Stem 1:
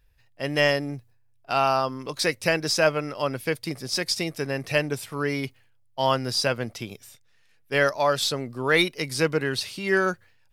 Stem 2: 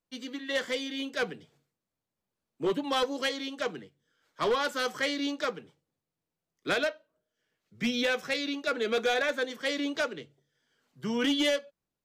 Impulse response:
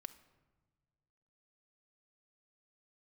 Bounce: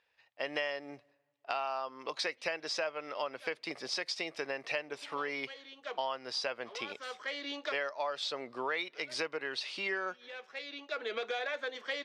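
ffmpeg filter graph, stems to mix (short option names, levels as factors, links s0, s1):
-filter_complex "[0:a]lowpass=11000,volume=1.26,asplit=3[s0][s1][s2];[s1]volume=0.15[s3];[1:a]adelay=2250,volume=1.19[s4];[s2]apad=whole_len=630468[s5];[s4][s5]sidechaincompress=threshold=0.0126:ratio=10:attack=20:release=725[s6];[2:a]atrim=start_sample=2205[s7];[s3][s7]afir=irnorm=-1:irlink=0[s8];[s0][s6][s8]amix=inputs=3:normalize=0,highpass=580,lowpass=3700,equalizer=f=1500:t=o:w=0.42:g=-3,acompressor=threshold=0.0224:ratio=6"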